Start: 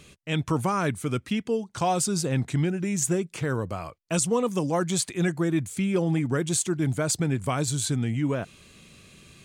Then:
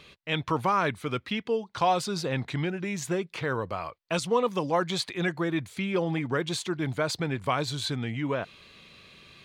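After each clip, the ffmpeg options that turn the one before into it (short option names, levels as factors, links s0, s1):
-af "equalizer=f=500:t=o:w=1:g=5,equalizer=f=1000:t=o:w=1:g=8,equalizer=f=2000:t=o:w=1:g=6,equalizer=f=4000:t=o:w=1:g=11,equalizer=f=8000:t=o:w=1:g=-10,volume=0.473"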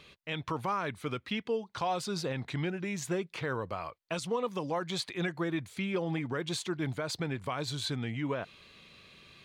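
-af "alimiter=limit=0.112:level=0:latency=1:release=139,volume=0.668"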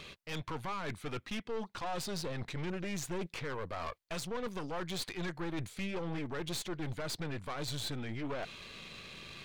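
-af "areverse,acompressor=threshold=0.00891:ratio=5,areverse,aeval=exprs='(tanh(178*val(0)+0.75)-tanh(0.75))/178':c=same,volume=3.55"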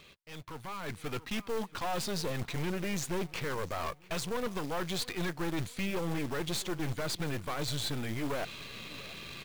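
-filter_complex "[0:a]asplit=2[s0][s1];[s1]adelay=682,lowpass=f=4600:p=1,volume=0.1,asplit=2[s2][s3];[s3]adelay=682,lowpass=f=4600:p=1,volume=0.41,asplit=2[s4][s5];[s5]adelay=682,lowpass=f=4600:p=1,volume=0.41[s6];[s0][s2][s4][s6]amix=inputs=4:normalize=0,acrusher=bits=3:mode=log:mix=0:aa=0.000001,dynaudnorm=f=350:g=5:m=3.55,volume=0.422"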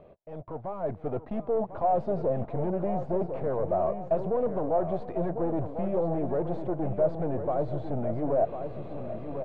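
-filter_complex "[0:a]asplit=2[s0][s1];[s1]aecho=0:1:1048|2096|3144|4192:0.316|0.114|0.041|0.0148[s2];[s0][s2]amix=inputs=2:normalize=0,asoftclip=type=tanh:threshold=0.0422,lowpass=f=650:t=q:w=4.9,volume=1.68"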